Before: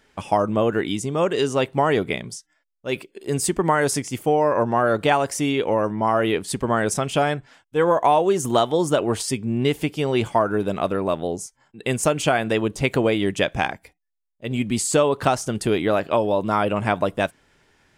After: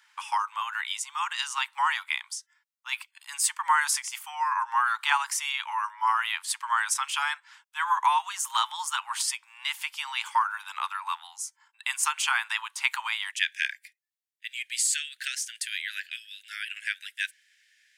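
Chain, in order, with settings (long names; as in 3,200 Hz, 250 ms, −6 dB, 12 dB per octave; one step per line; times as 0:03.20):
Butterworth high-pass 880 Hz 96 dB per octave, from 0:13.31 1,600 Hz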